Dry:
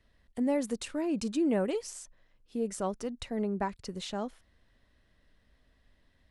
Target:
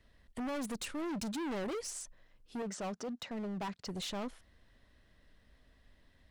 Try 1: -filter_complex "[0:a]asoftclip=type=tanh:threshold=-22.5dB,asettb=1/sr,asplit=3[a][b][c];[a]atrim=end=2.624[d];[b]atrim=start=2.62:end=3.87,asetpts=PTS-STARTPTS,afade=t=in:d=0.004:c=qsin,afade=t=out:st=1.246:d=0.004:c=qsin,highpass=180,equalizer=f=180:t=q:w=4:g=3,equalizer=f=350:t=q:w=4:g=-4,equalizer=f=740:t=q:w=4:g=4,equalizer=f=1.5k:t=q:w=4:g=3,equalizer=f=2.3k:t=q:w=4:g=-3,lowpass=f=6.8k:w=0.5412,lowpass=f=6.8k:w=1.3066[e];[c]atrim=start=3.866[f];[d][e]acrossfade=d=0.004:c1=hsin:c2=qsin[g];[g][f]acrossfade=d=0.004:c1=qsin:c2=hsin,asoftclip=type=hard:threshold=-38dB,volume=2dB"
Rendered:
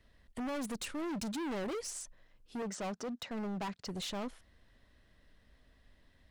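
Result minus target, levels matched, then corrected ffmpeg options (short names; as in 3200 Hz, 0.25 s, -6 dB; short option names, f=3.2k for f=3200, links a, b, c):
soft clip: distortion -10 dB
-filter_complex "[0:a]asoftclip=type=tanh:threshold=-31.5dB,asettb=1/sr,asplit=3[a][b][c];[a]atrim=end=2.624[d];[b]atrim=start=2.62:end=3.87,asetpts=PTS-STARTPTS,afade=t=in:d=0.004:c=qsin,afade=t=out:st=1.246:d=0.004:c=qsin,highpass=180,equalizer=f=180:t=q:w=4:g=3,equalizer=f=350:t=q:w=4:g=-4,equalizer=f=740:t=q:w=4:g=4,equalizer=f=1.5k:t=q:w=4:g=3,equalizer=f=2.3k:t=q:w=4:g=-3,lowpass=f=6.8k:w=0.5412,lowpass=f=6.8k:w=1.3066[e];[c]atrim=start=3.866[f];[d][e]acrossfade=d=0.004:c1=hsin:c2=qsin[g];[g][f]acrossfade=d=0.004:c1=qsin:c2=hsin,asoftclip=type=hard:threshold=-38dB,volume=2dB"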